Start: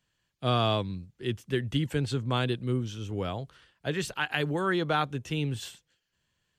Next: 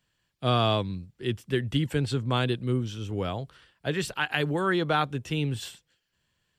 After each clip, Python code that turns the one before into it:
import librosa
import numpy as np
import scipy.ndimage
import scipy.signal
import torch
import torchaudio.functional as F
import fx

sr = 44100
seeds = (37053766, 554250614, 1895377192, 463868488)

y = fx.notch(x, sr, hz=6400.0, q=13.0)
y = y * librosa.db_to_amplitude(2.0)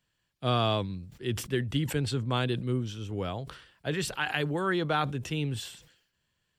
y = fx.sustainer(x, sr, db_per_s=85.0)
y = y * librosa.db_to_amplitude(-3.0)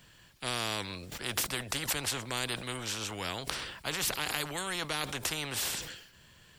y = fx.spectral_comp(x, sr, ratio=4.0)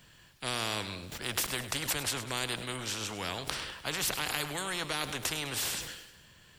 y = fx.echo_feedback(x, sr, ms=102, feedback_pct=51, wet_db=-13)